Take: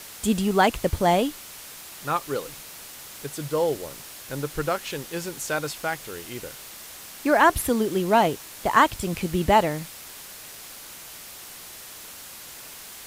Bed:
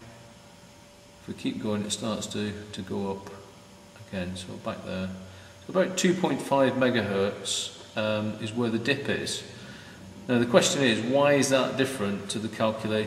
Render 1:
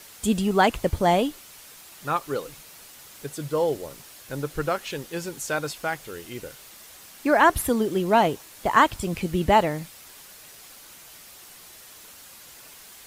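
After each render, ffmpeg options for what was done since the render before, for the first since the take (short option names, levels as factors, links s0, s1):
-af "afftdn=nr=6:nf=-42"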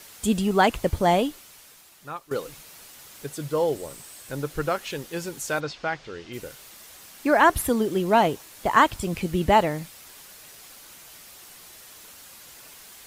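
-filter_complex "[0:a]asettb=1/sr,asplit=3[s0][s1][s2];[s0]atrim=end=3.764[s3];[s1]atrim=start=3.76:end=4.31,asetpts=PTS-STARTPTS,afade=t=in:d=0.004:c=qsin,afade=t=out:st=0.546:d=0.004:c=qsin,equalizer=f=8200:w=7.5:g=12[s4];[s2]atrim=start=4.306[s5];[s3][s4]acrossfade=d=0.004:c1=hsin:c2=qsin[s6];[s6][s5]acrossfade=d=0.004:c1=qsin:c2=hsin,asplit=3[s7][s8][s9];[s7]afade=t=out:st=5.59:d=0.02[s10];[s8]lowpass=f=5400:w=0.5412,lowpass=f=5400:w=1.3066,afade=t=in:st=5.59:d=0.02,afade=t=out:st=6.32:d=0.02[s11];[s9]afade=t=in:st=6.32:d=0.02[s12];[s10][s11][s12]amix=inputs=3:normalize=0,asplit=2[s13][s14];[s13]atrim=end=2.31,asetpts=PTS-STARTPTS,afade=t=out:st=1.17:d=1.14:silence=0.188365[s15];[s14]atrim=start=2.31,asetpts=PTS-STARTPTS,afade=t=in:d=0.004:c=hsin:silence=0.188365[s16];[s15][s16]concat=n=2:v=0:a=1"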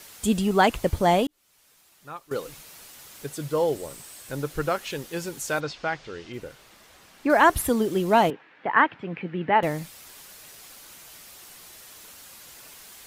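-filter_complex "[0:a]asettb=1/sr,asplit=3[s0][s1][s2];[s0]atrim=end=6.324[s3];[s1]atrim=start=6.32:end=7.3,asetpts=PTS-STARTPTS,afade=t=in:d=0.004:c=qsin,afade=t=out:st=0.976:d=0.004:c=qsin,lowpass=f=2400:p=1[s4];[s2]atrim=start=7.296[s5];[s3][s4]acrossfade=d=0.004:c1=hsin:c2=qsin[s6];[s6][s5]acrossfade=d=0.004:c1=qsin:c2=hsin,asettb=1/sr,asplit=3[s7][s8][s9];[s7]atrim=end=8.304[s10];[s8]atrim=start=8.3:end=9.63,asetpts=PTS-STARTPTS,afade=t=in:d=0.004:c=qsin,afade=t=out:st=1.326:d=0.004:c=qsin,highpass=f=170:w=0.5412,highpass=f=170:w=1.3066,equalizer=f=210:t=q:w=4:g=-7,equalizer=f=370:t=q:w=4:g=-5,equalizer=f=620:t=q:w=4:g=-6,equalizer=f=1100:t=q:w=4:g=-4,equalizer=f=1700:t=q:w=4:g=4,lowpass=f=2500:w=0.5412,lowpass=f=2500:w=1.3066[s11];[s9]atrim=start=9.626[s12];[s10][s11]acrossfade=d=0.004:c1=hsin:c2=qsin[s13];[s13][s12]acrossfade=d=0.004:c1=qsin:c2=hsin,asplit=2[s14][s15];[s14]atrim=end=1.27,asetpts=PTS-STARTPTS,afade=t=out:st=1.266:d=0.004:c=hsin[s16];[s15]atrim=start=1.27,asetpts=PTS-STARTPTS,afade=t=in:d=1.25[s17];[s16][s17]concat=n=2:v=0:a=1"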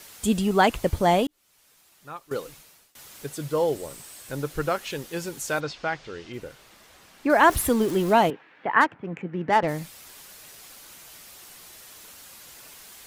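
-filter_complex "[0:a]asettb=1/sr,asplit=3[s0][s1][s2];[s0]atrim=end=7.434[s3];[s1]atrim=start=7.43:end=8.13,asetpts=PTS-STARTPTS,afade=t=in:d=0.004:c=qsin,afade=t=out:st=0.696:d=0.004:c=qsin,aeval=exprs='val(0)+0.5*0.0237*sgn(val(0))':c=same[s4];[s2]atrim=start=8.126[s5];[s3][s4]acrossfade=d=0.004:c1=hsin:c2=qsin[s6];[s6][s5]acrossfade=d=0.004:c1=qsin:c2=hsin,asplit=3[s7][s8][s9];[s7]afade=t=out:st=8.8:d=0.02[s10];[s8]adynamicsmooth=sensitivity=2.5:basefreq=1500,afade=t=in:st=8.8:d=0.02,afade=t=out:st=9.67:d=0.02[s11];[s9]afade=t=in:st=9.67:d=0.02[s12];[s10][s11][s12]amix=inputs=3:normalize=0,asplit=2[s13][s14];[s13]atrim=end=2.95,asetpts=PTS-STARTPTS,afade=t=out:st=2.33:d=0.62:silence=0.0630957[s15];[s14]atrim=start=2.95,asetpts=PTS-STARTPTS,afade=t=in:d=0.004:c=hsin:silence=0.0630957[s16];[s15][s16]concat=n=2:v=0:a=1"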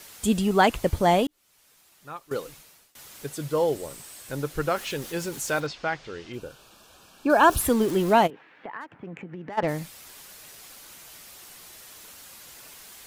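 -filter_complex "[0:a]asettb=1/sr,asplit=3[s0][s1][s2];[s0]atrim=end=4.764[s3];[s1]atrim=start=4.76:end=5.67,asetpts=PTS-STARTPTS,afade=t=in:d=0.004:c=qsin,afade=t=out:st=0.906:d=0.004:c=qsin,aeval=exprs='val(0)+0.5*0.01*sgn(val(0))':c=same[s4];[s2]atrim=start=5.666[s5];[s3][s4]acrossfade=d=0.004:c1=hsin:c2=qsin[s6];[s6][s5]acrossfade=d=0.004:c1=qsin:c2=hsin,asettb=1/sr,asplit=3[s7][s8][s9];[s7]atrim=end=6.354[s10];[s8]atrim=start=6.35:end=7.61,asetpts=PTS-STARTPTS,afade=t=in:d=0.004:c=qsin,afade=t=out:st=1.256:d=0.004:c=qsin,asuperstop=centerf=2000:order=4:qfactor=3.2[s11];[s9]atrim=start=7.606[s12];[s10][s11]acrossfade=d=0.004:c1=hsin:c2=qsin[s13];[s13][s12]acrossfade=d=0.004:c1=qsin:c2=hsin,asplit=3[s14][s15][s16];[s14]afade=t=out:st=8.26:d=0.02[s17];[s15]acompressor=threshold=0.02:ratio=8:attack=3.2:release=140:knee=1:detection=peak,afade=t=in:st=8.26:d=0.02,afade=t=out:st=9.57:d=0.02[s18];[s16]afade=t=in:st=9.57:d=0.02[s19];[s17][s18][s19]amix=inputs=3:normalize=0"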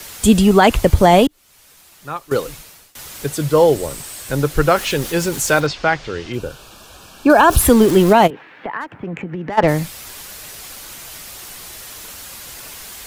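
-filter_complex "[0:a]acrossover=split=100|590|2000[s0][s1][s2][s3];[s0]acontrast=75[s4];[s4][s1][s2][s3]amix=inputs=4:normalize=0,alimiter=level_in=3.76:limit=0.891:release=50:level=0:latency=1"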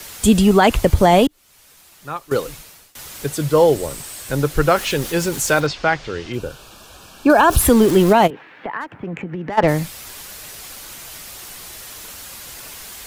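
-af "volume=0.891,alimiter=limit=0.708:level=0:latency=1"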